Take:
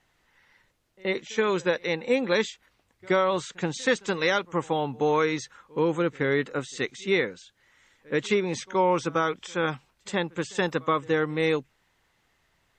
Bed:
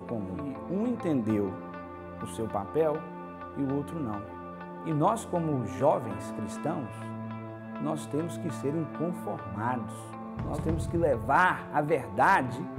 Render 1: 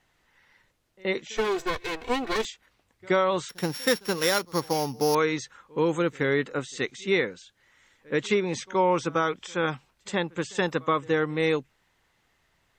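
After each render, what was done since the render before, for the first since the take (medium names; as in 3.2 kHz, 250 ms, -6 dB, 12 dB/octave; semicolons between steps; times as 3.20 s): 1.37–2.45 s: comb filter that takes the minimum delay 2.7 ms; 3.49–5.15 s: sorted samples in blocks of 8 samples; 5.79–6.31 s: treble shelf 6.1 kHz +11 dB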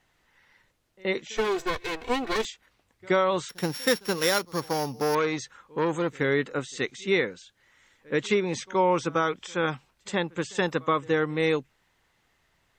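4.52–6.15 s: transformer saturation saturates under 880 Hz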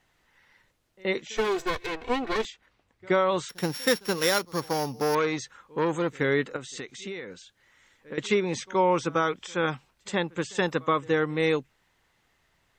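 1.86–3.29 s: low-pass 3.7 kHz 6 dB/octave; 6.56–8.18 s: compression 12:1, threshold -32 dBFS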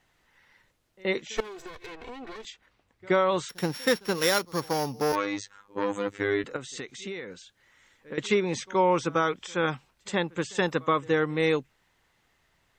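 1.40–2.47 s: compression 16:1, threshold -37 dBFS; 3.63–4.15 s: treble shelf 5.3 kHz -5.5 dB; 5.12–6.44 s: robot voice 101 Hz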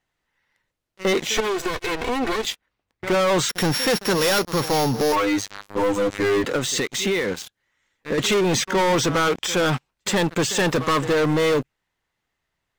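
waveshaping leveller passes 5; peak limiter -16 dBFS, peak gain reduction 5 dB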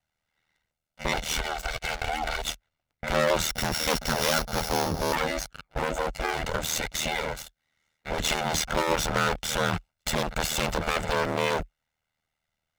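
comb filter that takes the minimum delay 1.4 ms; ring modulator 39 Hz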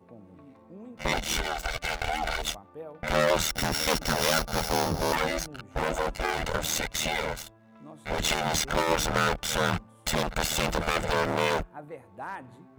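add bed -15.5 dB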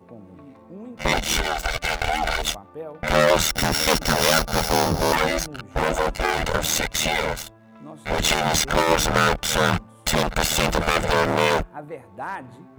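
trim +6.5 dB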